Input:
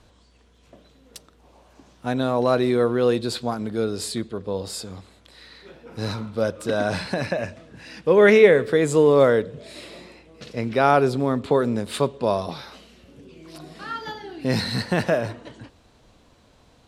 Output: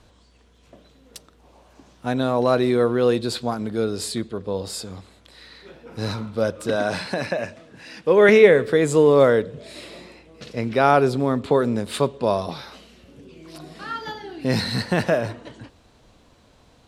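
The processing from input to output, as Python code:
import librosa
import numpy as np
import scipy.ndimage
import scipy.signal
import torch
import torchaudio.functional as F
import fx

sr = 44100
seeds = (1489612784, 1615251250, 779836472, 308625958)

y = fx.highpass(x, sr, hz=190.0, slope=6, at=(6.76, 8.29))
y = y * librosa.db_to_amplitude(1.0)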